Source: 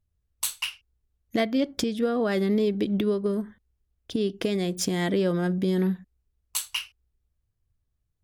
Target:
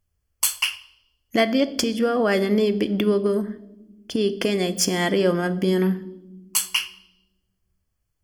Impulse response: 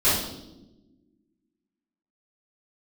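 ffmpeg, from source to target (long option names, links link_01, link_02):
-filter_complex "[0:a]asuperstop=centerf=3800:order=12:qfactor=6.2,lowshelf=frequency=310:gain=-8.5,asplit=2[link_01][link_02];[1:a]atrim=start_sample=2205[link_03];[link_02][link_03]afir=irnorm=-1:irlink=0,volume=-29dB[link_04];[link_01][link_04]amix=inputs=2:normalize=0,volume=7.5dB"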